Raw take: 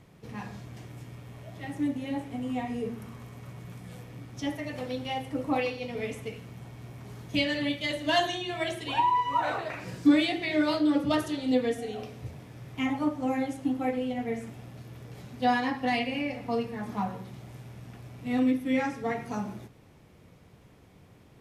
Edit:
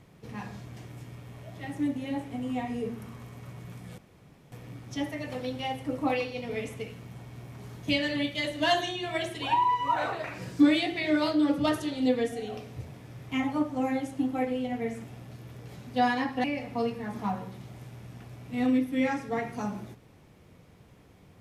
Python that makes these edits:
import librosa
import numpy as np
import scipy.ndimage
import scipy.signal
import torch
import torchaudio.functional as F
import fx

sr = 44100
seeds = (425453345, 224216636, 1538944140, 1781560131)

y = fx.edit(x, sr, fx.insert_room_tone(at_s=3.98, length_s=0.54),
    fx.cut(start_s=15.9, length_s=0.27), tone=tone)